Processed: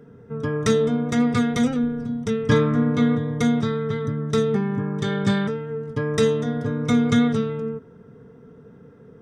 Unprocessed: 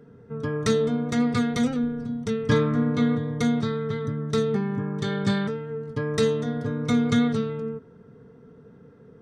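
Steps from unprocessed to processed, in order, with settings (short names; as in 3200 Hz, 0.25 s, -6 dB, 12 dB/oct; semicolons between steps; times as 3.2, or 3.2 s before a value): notch 4300 Hz, Q 6.9; gain +3 dB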